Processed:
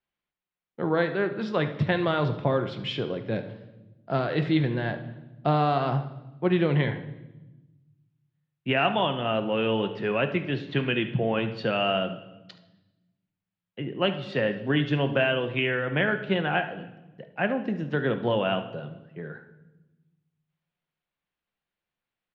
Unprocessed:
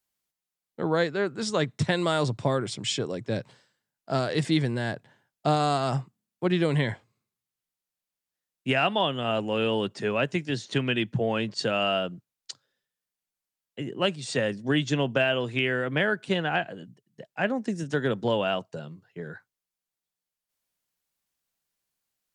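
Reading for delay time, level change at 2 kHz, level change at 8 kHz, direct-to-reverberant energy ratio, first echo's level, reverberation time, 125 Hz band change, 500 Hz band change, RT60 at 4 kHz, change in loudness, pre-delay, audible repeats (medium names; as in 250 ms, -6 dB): 73 ms, +0.5 dB, under -25 dB, 7.5 dB, -15.5 dB, 1.0 s, +1.5 dB, +0.5 dB, 0.90 s, +0.5 dB, 6 ms, 1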